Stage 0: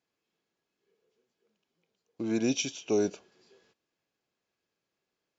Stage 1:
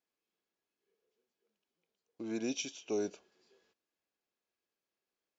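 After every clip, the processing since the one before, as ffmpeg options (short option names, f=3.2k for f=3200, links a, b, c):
-af "equalizer=f=130:w=1.6:g=-9,volume=-7dB"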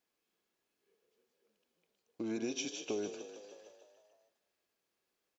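-filter_complex "[0:a]acompressor=threshold=-40dB:ratio=5,asplit=2[a][b];[b]asplit=8[c][d][e][f][g][h][i][j];[c]adelay=152,afreqshift=31,volume=-10.5dB[k];[d]adelay=304,afreqshift=62,volume=-14.2dB[l];[e]adelay=456,afreqshift=93,volume=-18dB[m];[f]adelay=608,afreqshift=124,volume=-21.7dB[n];[g]adelay=760,afreqshift=155,volume=-25.5dB[o];[h]adelay=912,afreqshift=186,volume=-29.2dB[p];[i]adelay=1064,afreqshift=217,volume=-33dB[q];[j]adelay=1216,afreqshift=248,volume=-36.7dB[r];[k][l][m][n][o][p][q][r]amix=inputs=8:normalize=0[s];[a][s]amix=inputs=2:normalize=0,volume=5dB"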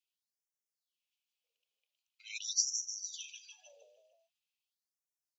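-af "afftdn=nr=18:nf=-60,highshelf=f=2.1k:t=q:w=3:g=9,afftfilt=real='re*gte(b*sr/1024,400*pow(5400/400,0.5+0.5*sin(2*PI*0.44*pts/sr)))':imag='im*gte(b*sr/1024,400*pow(5400/400,0.5+0.5*sin(2*PI*0.44*pts/sr)))':win_size=1024:overlap=0.75,volume=2dB"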